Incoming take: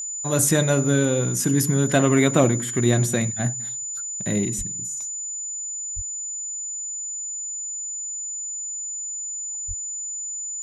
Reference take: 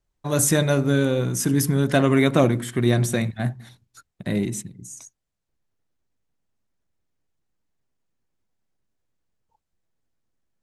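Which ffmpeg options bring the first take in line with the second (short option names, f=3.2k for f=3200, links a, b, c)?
-filter_complex "[0:a]bandreject=f=7k:w=30,asplit=3[a][b][c];[a]afade=t=out:st=4.57:d=0.02[d];[b]highpass=f=140:w=0.5412,highpass=f=140:w=1.3066,afade=t=in:st=4.57:d=0.02,afade=t=out:st=4.69:d=0.02[e];[c]afade=t=in:st=4.69:d=0.02[f];[d][e][f]amix=inputs=3:normalize=0,asplit=3[g][h][i];[g]afade=t=out:st=5.95:d=0.02[j];[h]highpass=f=140:w=0.5412,highpass=f=140:w=1.3066,afade=t=in:st=5.95:d=0.02,afade=t=out:st=6.07:d=0.02[k];[i]afade=t=in:st=6.07:d=0.02[l];[j][k][l]amix=inputs=3:normalize=0,asplit=3[m][n][o];[m]afade=t=out:st=9.67:d=0.02[p];[n]highpass=f=140:w=0.5412,highpass=f=140:w=1.3066,afade=t=in:st=9.67:d=0.02,afade=t=out:st=9.79:d=0.02[q];[o]afade=t=in:st=9.79:d=0.02[r];[p][q][r]amix=inputs=3:normalize=0"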